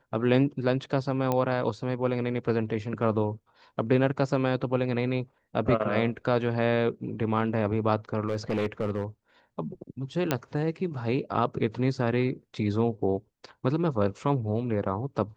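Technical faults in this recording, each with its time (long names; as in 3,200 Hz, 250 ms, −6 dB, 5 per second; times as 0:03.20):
0:01.32: click −14 dBFS
0:08.28–0:09.04: clipping −22.5 dBFS
0:10.31: click −10 dBFS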